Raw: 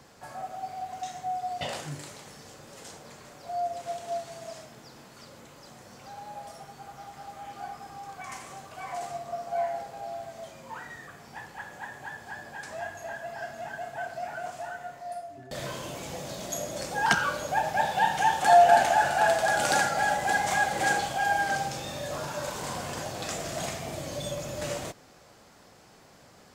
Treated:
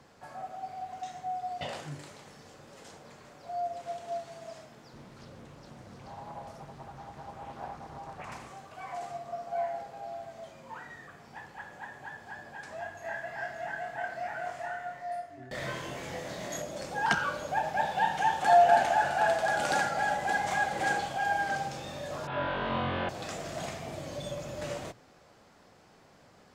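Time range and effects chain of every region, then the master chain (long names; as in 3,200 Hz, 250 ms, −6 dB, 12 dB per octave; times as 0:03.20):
0:04.93–0:08.48: low-shelf EQ 230 Hz +11.5 dB + highs frequency-modulated by the lows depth 0.5 ms
0:13.02–0:16.62: parametric band 1,900 Hz +9 dB 0.46 octaves + double-tracking delay 24 ms −2 dB
0:22.27–0:23.09: converter with a step at zero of −40 dBFS + elliptic low-pass filter 3,500 Hz, stop band 70 dB + flutter between parallel walls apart 3.8 metres, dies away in 1.3 s
whole clip: high-shelf EQ 6,000 Hz −10 dB; mains-hum notches 60/120 Hz; level −3 dB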